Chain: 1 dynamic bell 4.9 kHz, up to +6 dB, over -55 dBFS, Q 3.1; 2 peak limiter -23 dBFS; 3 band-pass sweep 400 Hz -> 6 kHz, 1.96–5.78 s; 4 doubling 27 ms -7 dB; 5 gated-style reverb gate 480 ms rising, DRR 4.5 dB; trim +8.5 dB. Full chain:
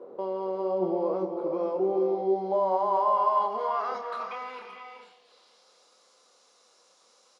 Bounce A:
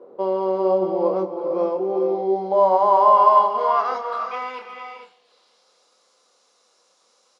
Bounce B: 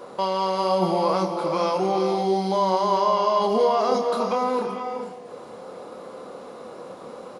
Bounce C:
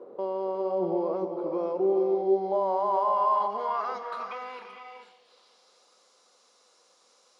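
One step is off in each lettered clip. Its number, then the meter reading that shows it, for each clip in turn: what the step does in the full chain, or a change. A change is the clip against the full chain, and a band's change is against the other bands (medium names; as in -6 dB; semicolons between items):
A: 2, mean gain reduction 3.5 dB; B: 3, 4 kHz band +12.5 dB; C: 4, crest factor change -1.5 dB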